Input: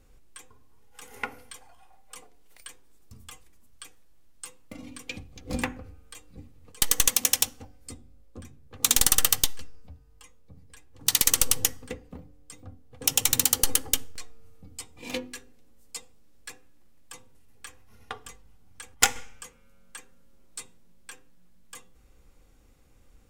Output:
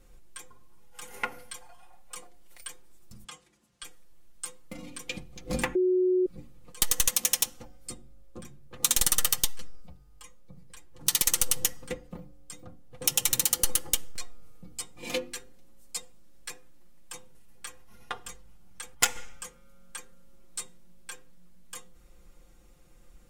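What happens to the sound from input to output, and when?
3.24–3.83 BPF 110–7300 Hz
5.75–6.26 bleep 367 Hz -22.5 dBFS
whole clip: bell 10000 Hz +2 dB; comb 5.7 ms, depth 71%; compressor 2:1, threshold -24 dBFS

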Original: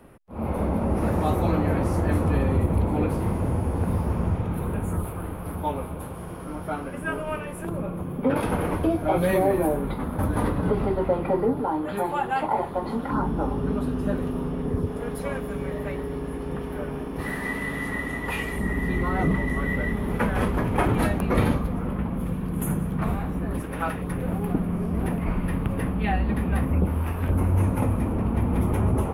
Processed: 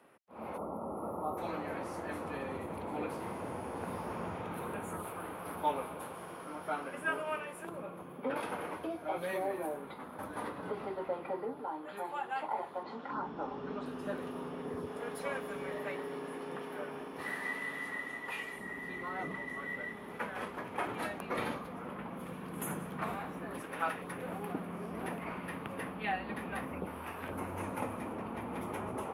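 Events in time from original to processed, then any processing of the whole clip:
0.57–1.38 spectral gain 1400–10000 Hz -24 dB
12.83–13.86 LPF 6800 Hz 24 dB/oct
15.79–16.95 HPF 110 Hz
whole clip: weighting filter A; vocal rider 2 s; gain -8.5 dB

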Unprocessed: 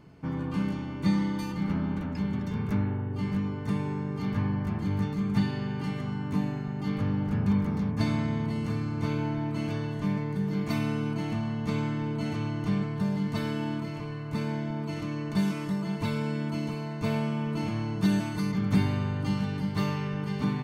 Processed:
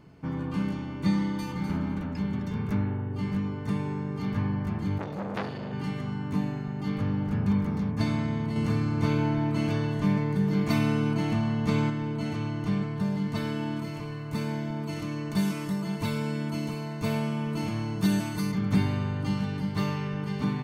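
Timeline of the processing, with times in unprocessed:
1.22–1.69 echo throw 0.25 s, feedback 15%, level -8 dB
4.98–5.73 core saturation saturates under 1700 Hz
8.56–11.9 gain +4 dB
13.76–18.55 high shelf 7400 Hz +10 dB

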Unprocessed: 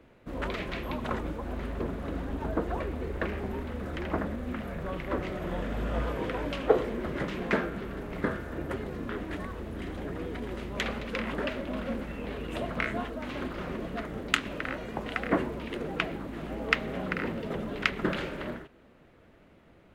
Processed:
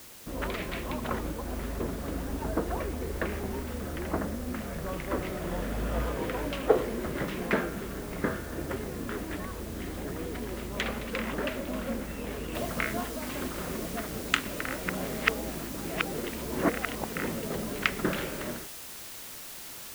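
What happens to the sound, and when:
3.89–4.55 bell 9300 Hz -13.5 dB 2 oct
12.55 noise floor step -49 dB -43 dB
14.86–17.15 reverse

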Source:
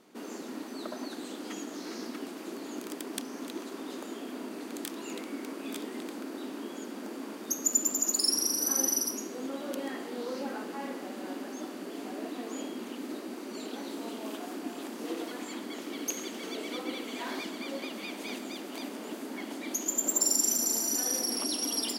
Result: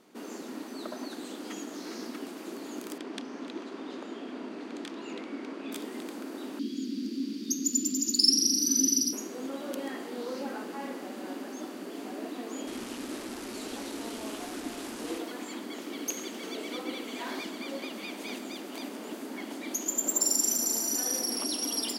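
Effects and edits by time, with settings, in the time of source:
2.98–5.72 LPF 4300 Hz
6.59–9.13 EQ curve 110 Hz 0 dB, 270 Hz +10 dB, 710 Hz -29 dB, 4700 Hz +10 dB, 7900 Hz -6 dB
12.67–15.18 delta modulation 64 kbps, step -35 dBFS

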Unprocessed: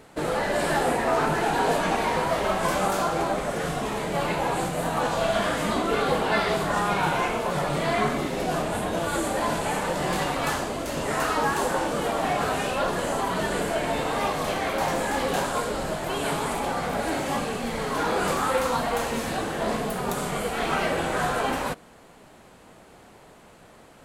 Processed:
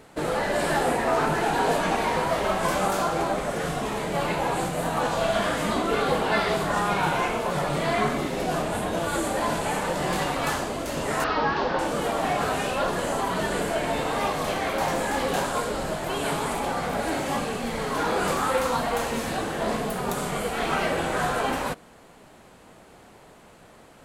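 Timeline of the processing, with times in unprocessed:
11.24–11.79 steep low-pass 5300 Hz 48 dB/oct

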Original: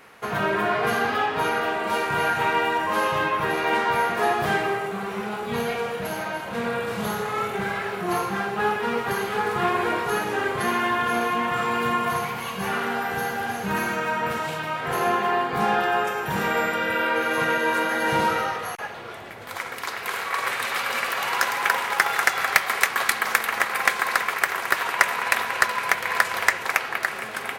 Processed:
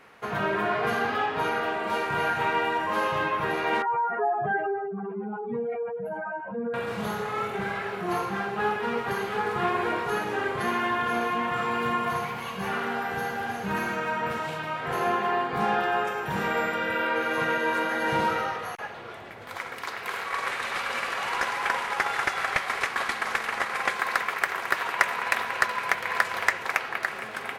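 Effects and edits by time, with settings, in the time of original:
3.82–6.74 spectral contrast raised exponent 2.6
20.27–23.95 CVSD 64 kbps
whole clip: high shelf 6400 Hz -8.5 dB; gain -3 dB

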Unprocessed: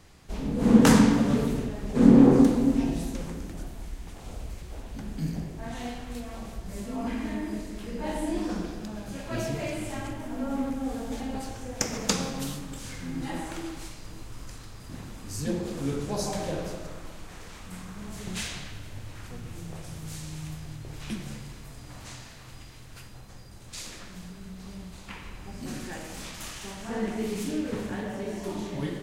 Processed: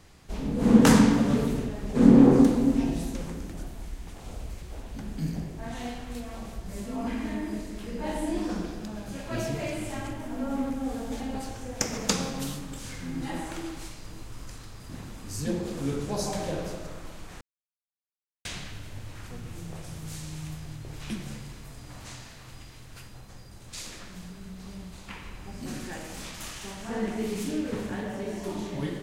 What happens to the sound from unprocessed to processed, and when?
17.41–18.45 mute

